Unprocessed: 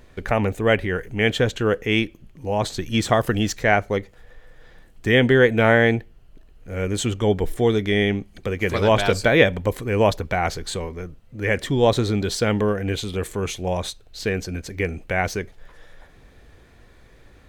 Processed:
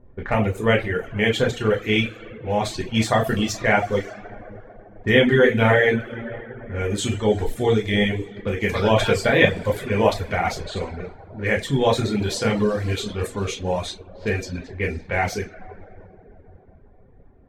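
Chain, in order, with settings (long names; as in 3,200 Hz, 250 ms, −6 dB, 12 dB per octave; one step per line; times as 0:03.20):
coupled-rooms reverb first 0.46 s, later 4.6 s, from −18 dB, DRR −2.5 dB
reverb reduction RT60 0.73 s
low-pass that shuts in the quiet parts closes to 570 Hz, open at −17.5 dBFS
level −3 dB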